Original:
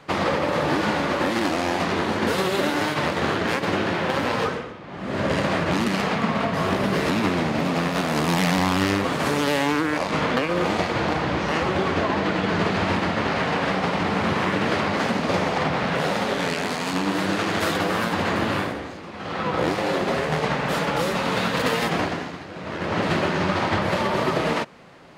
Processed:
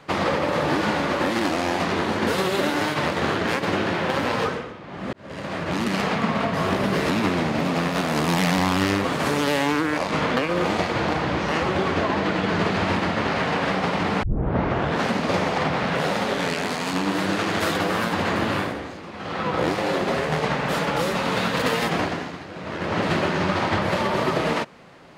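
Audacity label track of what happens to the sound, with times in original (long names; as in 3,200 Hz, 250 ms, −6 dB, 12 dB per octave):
5.130000	5.990000	fade in
14.230000	14.230000	tape start 0.86 s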